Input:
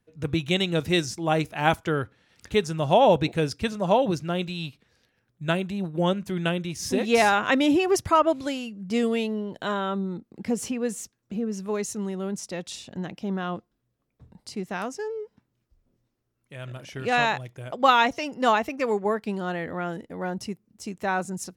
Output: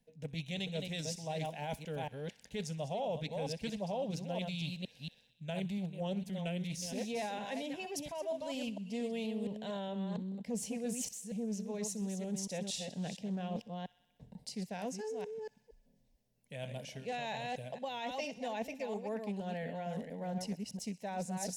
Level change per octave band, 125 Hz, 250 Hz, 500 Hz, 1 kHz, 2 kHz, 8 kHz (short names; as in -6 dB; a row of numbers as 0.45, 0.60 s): -10.0, -11.5, -14.0, -17.5, -18.0, -6.5 dB